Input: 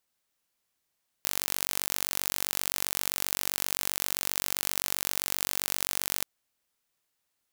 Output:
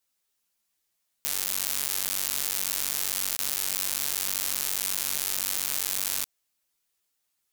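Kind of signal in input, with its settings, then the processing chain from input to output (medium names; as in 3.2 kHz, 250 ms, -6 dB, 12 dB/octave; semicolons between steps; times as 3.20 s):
pulse train 47.6 per s, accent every 0, -2 dBFS 4.99 s
treble shelf 3.1 kHz +7 dB; crackling interface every 0.19 s, samples 64, zero, from 0.90 s; three-phase chorus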